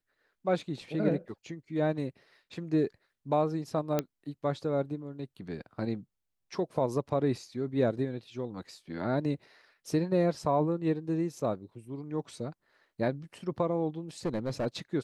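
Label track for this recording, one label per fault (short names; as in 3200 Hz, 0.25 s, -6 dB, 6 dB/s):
3.990000	3.990000	pop -14 dBFS
14.250000	14.670000	clipped -26.5 dBFS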